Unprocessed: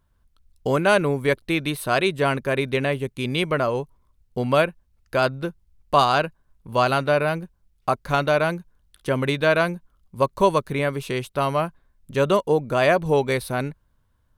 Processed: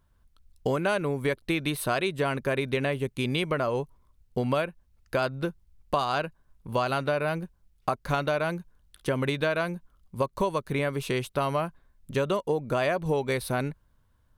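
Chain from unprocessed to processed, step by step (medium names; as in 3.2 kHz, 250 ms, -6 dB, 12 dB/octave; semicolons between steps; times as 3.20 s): compression 6:1, threshold -23 dBFS, peak gain reduction 11.5 dB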